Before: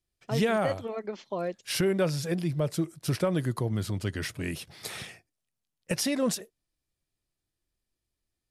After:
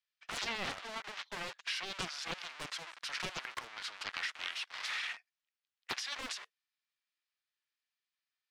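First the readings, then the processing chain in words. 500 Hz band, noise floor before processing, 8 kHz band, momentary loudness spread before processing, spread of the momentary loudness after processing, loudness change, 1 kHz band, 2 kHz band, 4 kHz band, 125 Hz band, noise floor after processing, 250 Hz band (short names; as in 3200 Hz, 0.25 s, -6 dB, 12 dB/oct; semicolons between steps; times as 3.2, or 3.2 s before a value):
-21.0 dB, under -85 dBFS, -9.5 dB, 11 LU, 6 LU, -9.5 dB, -6.0 dB, -1.0 dB, -0.5 dB, -26.5 dB, under -85 dBFS, -23.5 dB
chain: in parallel at -7 dB: Schmitt trigger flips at -46 dBFS; on the sum: Bessel high-pass 1800 Hz, order 4; high shelf 2700 Hz -8.5 dB; compressor 10:1, threshold -39 dBFS, peak gain reduction 8 dB; LPF 4500 Hz 12 dB/oct; Doppler distortion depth 0.67 ms; gain +7 dB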